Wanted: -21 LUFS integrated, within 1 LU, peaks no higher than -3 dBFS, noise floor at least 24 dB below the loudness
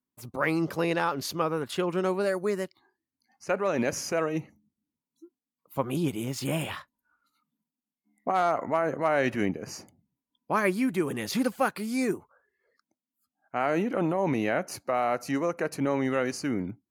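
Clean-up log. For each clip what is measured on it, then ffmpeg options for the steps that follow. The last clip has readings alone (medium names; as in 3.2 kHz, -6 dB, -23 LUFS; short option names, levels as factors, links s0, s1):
loudness -29.0 LUFS; peak level -12.0 dBFS; loudness target -21.0 LUFS
-> -af "volume=2.51"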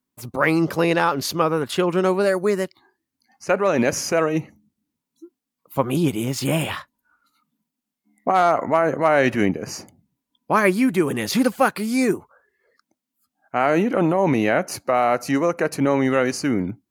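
loudness -21.0 LUFS; peak level -4.0 dBFS; noise floor -83 dBFS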